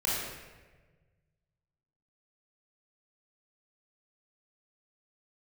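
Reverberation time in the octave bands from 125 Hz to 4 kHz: 2.4, 1.6, 1.5, 1.2, 1.3, 0.90 s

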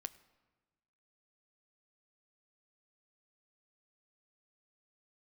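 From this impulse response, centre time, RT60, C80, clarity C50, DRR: 4 ms, 1.3 s, 19.0 dB, 18.0 dB, 12.0 dB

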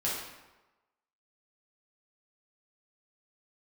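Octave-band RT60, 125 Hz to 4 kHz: 1.0, 1.0, 1.1, 1.1, 0.95, 0.75 s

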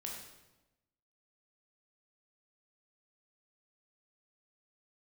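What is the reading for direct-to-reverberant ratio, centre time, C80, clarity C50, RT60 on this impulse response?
-1.5 dB, 50 ms, 5.0 dB, 2.5 dB, 1.0 s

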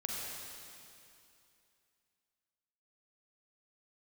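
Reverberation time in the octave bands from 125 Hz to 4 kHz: 2.7, 2.7, 2.7, 2.6, 2.6, 2.6 s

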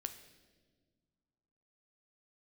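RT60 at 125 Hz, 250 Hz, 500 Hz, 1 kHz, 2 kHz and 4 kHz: 2.4, 2.3, 1.8, 1.2, 1.2, 1.2 s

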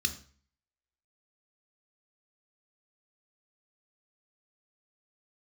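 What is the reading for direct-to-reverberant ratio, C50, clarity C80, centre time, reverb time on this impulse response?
7.5 dB, 13.5 dB, 17.5 dB, 8 ms, 0.45 s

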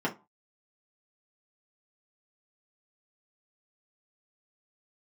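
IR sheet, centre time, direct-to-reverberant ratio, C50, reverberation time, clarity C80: 12 ms, -4.5 dB, 15.5 dB, not exponential, 23.5 dB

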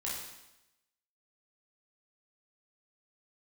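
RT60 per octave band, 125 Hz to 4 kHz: 0.90, 0.95, 0.90, 0.95, 0.90, 0.90 s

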